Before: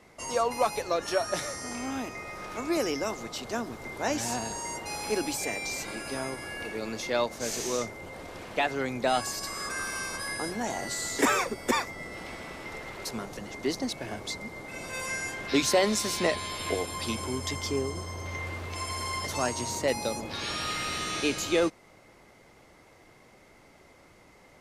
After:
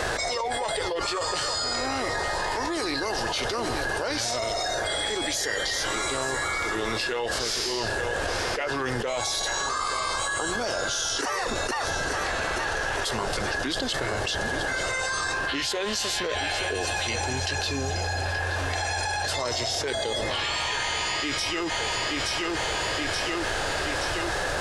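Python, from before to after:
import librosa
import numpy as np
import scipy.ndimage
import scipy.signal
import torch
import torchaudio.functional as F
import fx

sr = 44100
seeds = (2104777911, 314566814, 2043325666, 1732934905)

y = fx.peak_eq(x, sr, hz=220.0, db=-15.0, octaves=1.6)
y = fx.formant_shift(y, sr, semitones=-4)
y = fx.echo_feedback(y, sr, ms=875, feedback_pct=43, wet_db=-17.0)
y = fx.env_flatten(y, sr, amount_pct=100)
y = F.gain(torch.from_numpy(y), -4.5).numpy()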